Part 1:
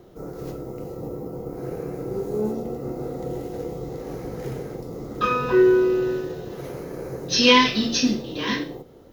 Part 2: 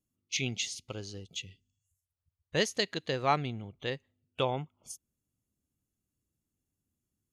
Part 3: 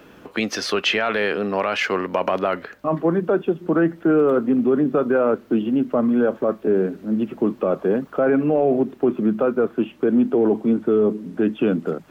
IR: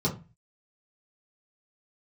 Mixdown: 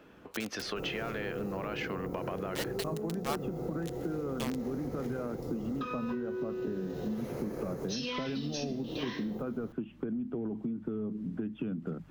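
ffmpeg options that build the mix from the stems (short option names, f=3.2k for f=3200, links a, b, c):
-filter_complex "[0:a]acompressor=threshold=-31dB:ratio=6,adelay=600,volume=0dB[a];[1:a]bandreject=f=50:t=h:w=6,bandreject=f=100:t=h:w=6,acrusher=bits=3:mix=0:aa=0.000001,volume=-10.5dB[b];[2:a]asubboost=boost=6.5:cutoff=180,acompressor=threshold=-17dB:ratio=6,highshelf=f=4.8k:g=-6,volume=-9.5dB[c];[a][c]amix=inputs=2:normalize=0,acompressor=threshold=-32dB:ratio=6,volume=0dB[d];[b][d]amix=inputs=2:normalize=0"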